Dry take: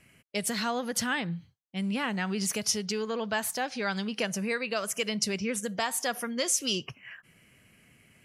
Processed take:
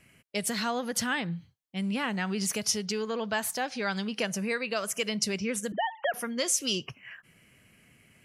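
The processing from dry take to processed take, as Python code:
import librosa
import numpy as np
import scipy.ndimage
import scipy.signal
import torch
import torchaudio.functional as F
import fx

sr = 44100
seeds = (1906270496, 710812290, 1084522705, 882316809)

y = fx.sine_speech(x, sr, at=(5.72, 6.14))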